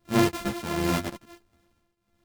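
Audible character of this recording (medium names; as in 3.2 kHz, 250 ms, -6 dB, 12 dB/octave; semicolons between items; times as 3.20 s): a buzz of ramps at a fixed pitch in blocks of 128 samples; tremolo triangle 1.4 Hz, depth 85%; a shimmering, thickened sound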